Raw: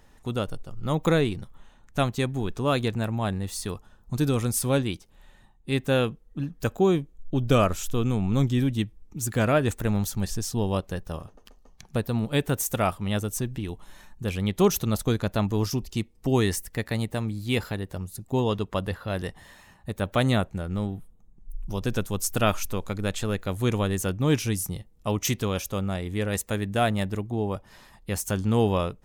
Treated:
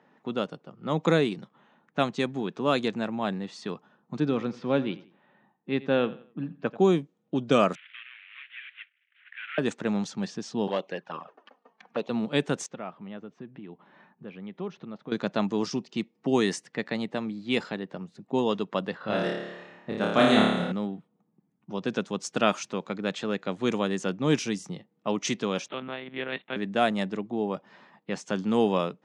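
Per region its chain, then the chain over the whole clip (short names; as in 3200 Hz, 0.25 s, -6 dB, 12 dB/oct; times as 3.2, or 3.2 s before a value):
4.2–6.79 air absorption 240 m + feedback echo 87 ms, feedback 34%, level -18 dB
7.75–9.58 CVSD 16 kbps + steep high-pass 1700 Hz + tilt +2 dB/oct
10.67–12.1 low shelf 220 Hz -11 dB + envelope flanger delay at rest 5.1 ms, full sweep at -29 dBFS + overdrive pedal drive 16 dB, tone 2400 Hz, clips at -16.5 dBFS
12.66–15.12 compressor 2:1, threshold -41 dBFS + air absorption 190 m
18.98–20.72 low shelf 86 Hz +8.5 dB + flutter echo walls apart 4.8 m, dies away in 0.99 s
25.68–26.56 G.711 law mismatch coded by A + tilt shelf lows -6 dB, about 1200 Hz + monotone LPC vocoder at 8 kHz 130 Hz
whole clip: steep high-pass 160 Hz 36 dB/oct; low-pass opened by the level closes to 2100 Hz, open at -18.5 dBFS; LPF 7700 Hz 24 dB/oct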